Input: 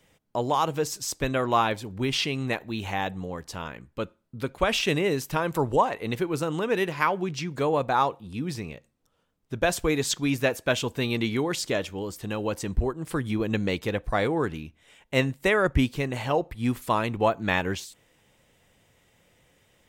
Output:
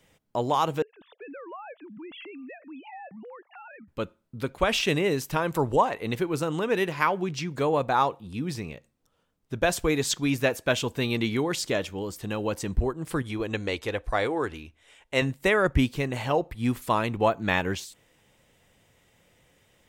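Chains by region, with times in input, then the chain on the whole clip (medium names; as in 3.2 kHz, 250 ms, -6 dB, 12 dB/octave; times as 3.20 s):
0.82–3.88 s: formants replaced by sine waves + low-pass 2.7 kHz + compression 4:1, threshold -42 dBFS
13.22–15.22 s: low-pass 12 kHz 24 dB/octave + peaking EQ 170 Hz -12.5 dB 0.99 oct
whole clip: none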